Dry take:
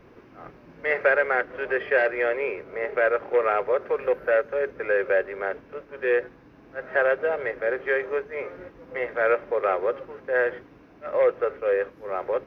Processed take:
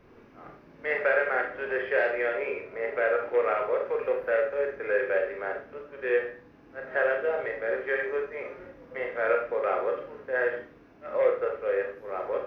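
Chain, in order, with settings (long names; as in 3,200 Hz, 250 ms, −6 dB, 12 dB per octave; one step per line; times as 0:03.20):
four-comb reverb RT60 0.4 s, combs from 27 ms, DRR 1.5 dB
level −5.5 dB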